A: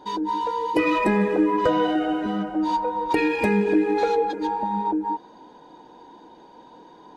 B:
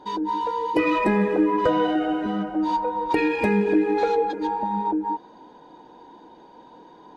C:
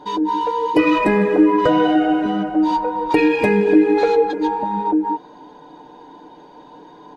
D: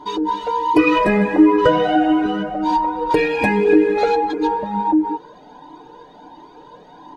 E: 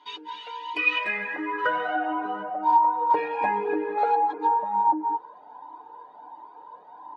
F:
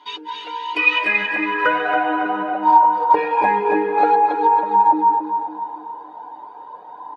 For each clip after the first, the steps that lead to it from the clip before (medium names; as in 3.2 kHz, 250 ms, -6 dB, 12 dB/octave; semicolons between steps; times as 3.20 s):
treble shelf 5.9 kHz -7 dB
comb 6.8 ms, depth 41%; trim +5 dB
Shepard-style flanger rising 1.4 Hz; trim +5.5 dB
band-pass sweep 2.7 kHz -> 950 Hz, 0.92–2.28 s
feedback delay 277 ms, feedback 47%, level -6.5 dB; trim +7 dB